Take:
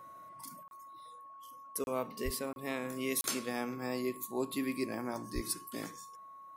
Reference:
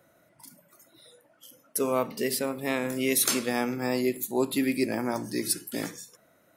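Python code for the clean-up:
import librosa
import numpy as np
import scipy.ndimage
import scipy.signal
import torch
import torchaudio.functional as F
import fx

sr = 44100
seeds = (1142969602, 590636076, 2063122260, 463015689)

y = fx.notch(x, sr, hz=1100.0, q=30.0)
y = fx.fix_deplosive(y, sr, at_s=(2.24, 5.34))
y = fx.fix_interpolate(y, sr, at_s=(0.68, 1.84, 2.53, 3.21), length_ms=31.0)
y = fx.fix_level(y, sr, at_s=0.63, step_db=9.0)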